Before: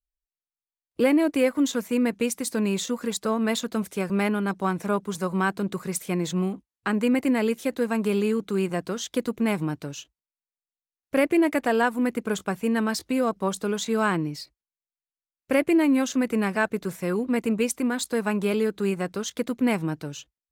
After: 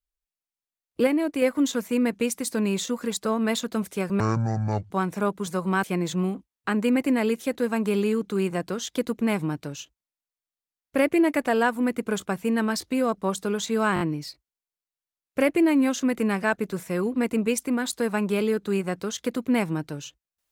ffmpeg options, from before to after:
-filter_complex "[0:a]asplit=9[a][b][c][d][e][f][g][h][i];[a]atrim=end=1.072[j];[b]atrim=start=1.068:end=1.422,asetpts=PTS-STARTPTS,volume=-3.5dB[k];[c]atrim=start=1.418:end=4.204[l];[d]atrim=start=4.2:end=4.58,asetpts=PTS-STARTPTS,asetrate=23814,aresample=44100,atrim=end_sample=31033,asetpts=PTS-STARTPTS[m];[e]atrim=start=4.576:end=5.512[n];[f]atrim=start=6.018:end=14.152[o];[g]atrim=start=14.128:end=14.152[p];[h]atrim=start=14.128:end=14.152[q];[i]atrim=start=14.128[r];[j][k]acrossfade=d=0.004:c1=hsin:c2=hsin[s];[s][l]acrossfade=d=0.004:c1=hsin:c2=hsin[t];[t][m]acrossfade=d=0.004:c1=hsin:c2=hsin[u];[u][n]acrossfade=d=0.004:c1=hsin:c2=hsin[v];[v][o]acrossfade=d=0.004:c1=hsin:c2=hsin[w];[w][p]acrossfade=d=0.004:c1=hsin:c2=hsin[x];[x][q]acrossfade=d=0.004:c1=hsin:c2=hsin[y];[y][r]acrossfade=d=0.004:c1=hsin:c2=hsin"

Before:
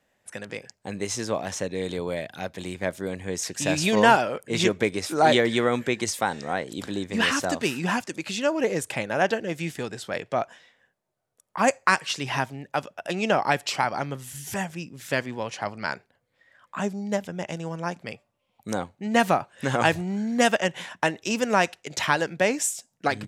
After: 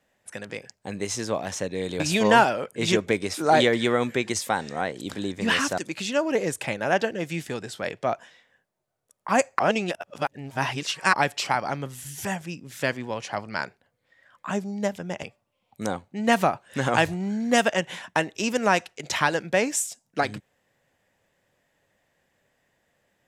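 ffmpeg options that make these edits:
-filter_complex "[0:a]asplit=6[a][b][c][d][e][f];[a]atrim=end=2.002[g];[b]atrim=start=3.718:end=7.502[h];[c]atrim=start=8.068:end=11.882[i];[d]atrim=start=11.878:end=13.422,asetpts=PTS-STARTPTS,areverse[j];[e]atrim=start=13.418:end=17.522[k];[f]atrim=start=18.098[l];[g][h]acrossfade=d=0.004:c1=hsin:c2=hsin[m];[m][i]acrossfade=d=0.004:c1=hsin:c2=hsin[n];[n][j]acrossfade=d=0.004:c1=hsin:c2=hsin[o];[o][k]acrossfade=d=0.004:c1=hsin:c2=hsin[p];[p][l]acrossfade=d=0.004:c1=hsin:c2=hsin"

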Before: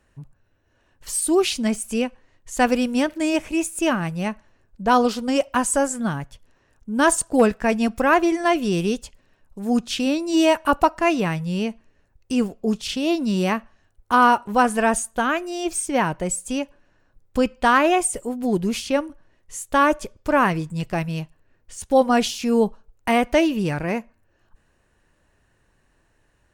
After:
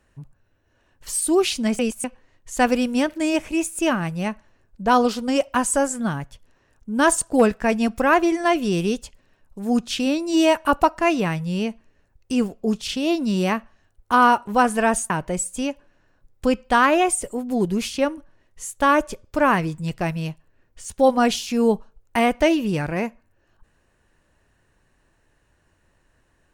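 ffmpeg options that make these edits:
-filter_complex "[0:a]asplit=4[a][b][c][d];[a]atrim=end=1.792[e];[b]atrim=start=1.788:end=2.042,asetpts=PTS-STARTPTS,areverse[f];[c]atrim=start=2.038:end=15.102[g];[d]atrim=start=16.018[h];[e][f]acrossfade=d=0.004:c1=hsin:c2=hsin[i];[i][g]acrossfade=d=0.004:c1=hsin:c2=hsin[j];[j][h]acrossfade=d=0.004:c1=hsin:c2=hsin"

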